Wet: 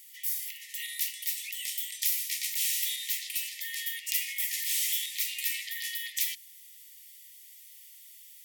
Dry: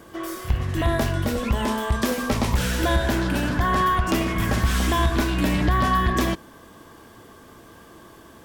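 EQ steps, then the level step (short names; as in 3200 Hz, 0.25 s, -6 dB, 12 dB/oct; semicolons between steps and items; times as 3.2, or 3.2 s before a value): brick-wall FIR high-pass 1800 Hz; tilt +3 dB/oct; high shelf 11000 Hz +11 dB; -8.5 dB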